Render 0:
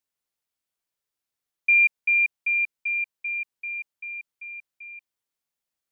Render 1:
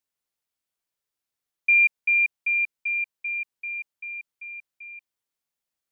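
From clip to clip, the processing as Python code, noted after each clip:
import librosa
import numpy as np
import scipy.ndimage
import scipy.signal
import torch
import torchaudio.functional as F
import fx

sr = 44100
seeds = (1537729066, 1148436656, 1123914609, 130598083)

y = x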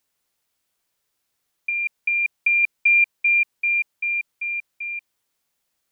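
y = fx.over_compress(x, sr, threshold_db=-26.0, ratio=-1.0)
y = y * librosa.db_to_amplitude(7.5)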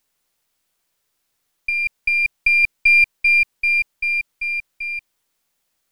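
y = np.where(x < 0.0, 10.0 ** (-3.0 / 20.0) * x, x)
y = y * librosa.db_to_amplitude(4.5)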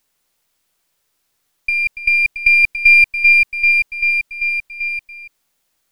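y = x + 10.0 ** (-12.0 / 20.0) * np.pad(x, (int(285 * sr / 1000.0), 0))[:len(x)]
y = y * librosa.db_to_amplitude(3.5)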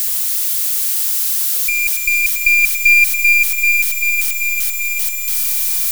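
y = x + 0.5 * 10.0 ** (-13.5 / 20.0) * np.diff(np.sign(x), prepend=np.sign(x[:1]))
y = fx.echo_swell(y, sr, ms=121, loudest=5, wet_db=-16.0)
y = y * librosa.db_to_amplitude(-1.0)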